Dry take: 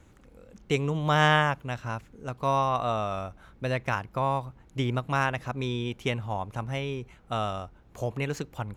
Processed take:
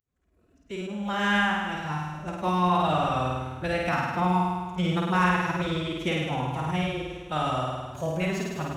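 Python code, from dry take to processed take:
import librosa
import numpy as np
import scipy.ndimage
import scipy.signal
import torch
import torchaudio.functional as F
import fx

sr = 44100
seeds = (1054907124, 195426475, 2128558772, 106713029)

y = fx.fade_in_head(x, sr, length_s=2.46)
y = fx.room_flutter(y, sr, wall_m=8.9, rt60_s=1.5)
y = fx.pitch_keep_formants(y, sr, semitones=5.0)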